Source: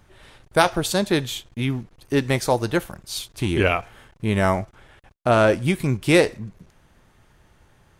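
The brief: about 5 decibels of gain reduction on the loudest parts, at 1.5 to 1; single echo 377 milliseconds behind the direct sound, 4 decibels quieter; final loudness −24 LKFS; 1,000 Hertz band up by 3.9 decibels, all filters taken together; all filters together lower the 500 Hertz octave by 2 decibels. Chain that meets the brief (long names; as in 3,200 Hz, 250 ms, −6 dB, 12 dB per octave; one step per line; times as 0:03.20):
parametric band 500 Hz −5 dB
parametric band 1,000 Hz +7 dB
downward compressor 1.5 to 1, threshold −23 dBFS
single-tap delay 377 ms −4 dB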